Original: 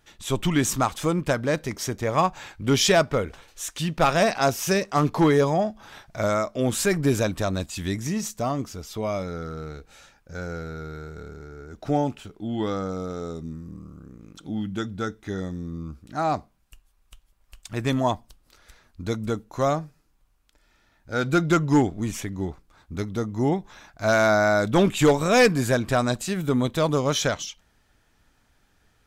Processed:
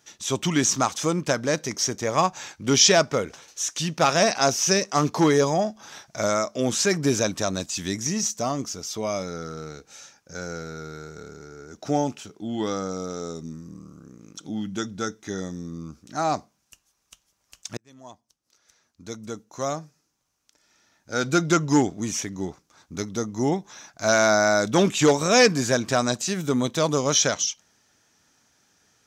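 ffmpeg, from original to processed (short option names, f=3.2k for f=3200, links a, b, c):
-filter_complex "[0:a]asplit=2[a][b];[a]atrim=end=17.77,asetpts=PTS-STARTPTS,afade=t=out:st=17.766:d=0.004:c=hsin[c];[b]atrim=start=17.77,asetpts=PTS-STARTPTS,afade=t=in:d=3.49[d];[c][d]concat=n=2:v=0:a=1,highpass=140,acrossover=split=6200[e][f];[f]acompressor=threshold=-41dB:ratio=4:attack=1:release=60[g];[e][g]amix=inputs=2:normalize=0,equalizer=f=6k:t=o:w=0.67:g=13.5"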